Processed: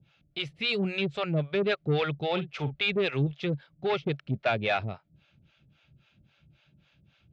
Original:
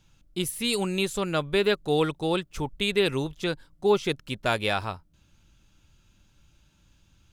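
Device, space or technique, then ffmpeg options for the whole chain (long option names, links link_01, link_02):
guitar amplifier with harmonic tremolo: -filter_complex "[0:a]acrossover=split=490[link_01][link_02];[link_01]aeval=exprs='val(0)*(1-1/2+1/2*cos(2*PI*3.7*n/s))':channel_layout=same[link_03];[link_02]aeval=exprs='val(0)*(1-1/2-1/2*cos(2*PI*3.7*n/s))':channel_layout=same[link_04];[link_03][link_04]amix=inputs=2:normalize=0,asoftclip=type=tanh:threshold=-25.5dB,highpass=92,equalizer=frequency=140:width_type=q:width=4:gain=9,equalizer=frequency=310:width_type=q:width=4:gain=-4,equalizer=frequency=660:width_type=q:width=4:gain=6,equalizer=frequency=990:width_type=q:width=4:gain=-8,equalizer=frequency=2300:width_type=q:width=4:gain=5,lowpass=frequency=4000:width=0.5412,lowpass=frequency=4000:width=1.3066,asettb=1/sr,asplit=3[link_05][link_06][link_07];[link_05]atrim=end=2.314[link_08];[link_06]atrim=start=2.31:end=2.83,asetpts=PTS-STARTPTS,afade=type=in:duration=0.004:curve=qsin,afade=type=out:start_time=0.516:duration=0.004:curve=qsin,asplit=2[link_09][link_10];[link_10]adelay=45,volume=-12dB[link_11];[link_09][link_11]amix=inputs=2:normalize=0,atrim=end_sample=22932[link_12];[link_07]atrim=start=2.826[link_13];[link_08][link_12]acrossfade=duration=0.004:curve1=hsin:curve2=qsin[link_14];[link_14][link_13]acrossfade=duration=0.004:curve1=qsin:curve2=hsin,volume=4.5dB"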